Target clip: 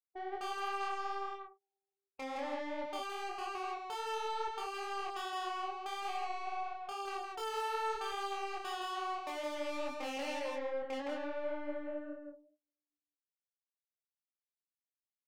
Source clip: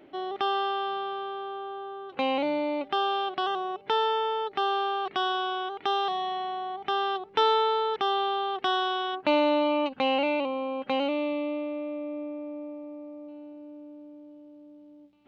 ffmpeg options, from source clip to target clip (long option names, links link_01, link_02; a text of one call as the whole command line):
ffmpeg -i in.wav -filter_complex "[0:a]acrossover=split=3000[link_01][link_02];[link_02]acompressor=threshold=-43dB:ratio=4:attack=1:release=60[link_03];[link_01][link_03]amix=inputs=2:normalize=0,afftfilt=real='re*gte(hypot(re,im),0.1)':imag='im*gte(hypot(re,im),0.1)':win_size=1024:overlap=0.75,agate=range=-37dB:threshold=-34dB:ratio=16:detection=peak,highpass=frequency=560:poles=1,afftdn=noise_reduction=20:noise_floor=-52,asplit=2[link_04][link_05];[link_05]acompressor=threshold=-42dB:ratio=6,volume=0dB[link_06];[link_04][link_06]amix=inputs=2:normalize=0,aeval=exprs='(tanh(70.8*val(0)+0.3)-tanh(0.3))/70.8':channel_layout=same,flanger=delay=22.5:depth=3.6:speed=2.4,aecho=1:1:165:0.668,volume=1.5dB" out.wav